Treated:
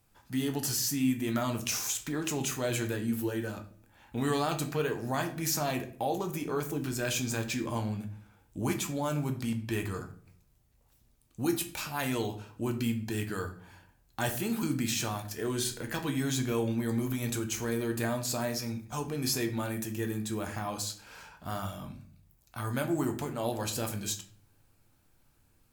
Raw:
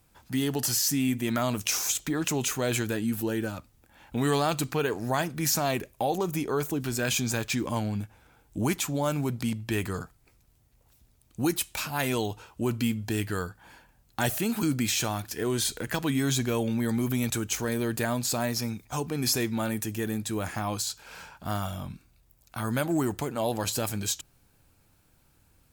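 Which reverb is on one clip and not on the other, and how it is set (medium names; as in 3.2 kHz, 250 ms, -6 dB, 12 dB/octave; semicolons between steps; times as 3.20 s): simulated room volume 56 m³, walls mixed, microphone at 0.37 m; trim -5.5 dB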